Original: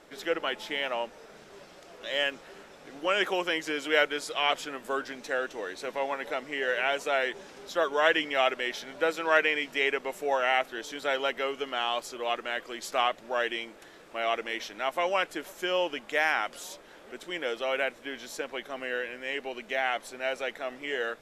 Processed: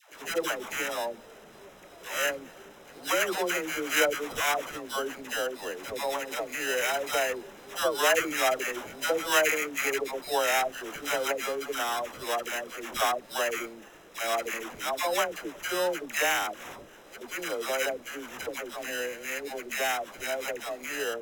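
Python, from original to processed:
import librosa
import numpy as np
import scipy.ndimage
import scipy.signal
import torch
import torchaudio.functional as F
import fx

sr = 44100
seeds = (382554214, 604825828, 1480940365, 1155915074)

y = fx.sample_hold(x, sr, seeds[0], rate_hz=4500.0, jitter_pct=0)
y = fx.dispersion(y, sr, late='lows', ms=126.0, hz=590.0)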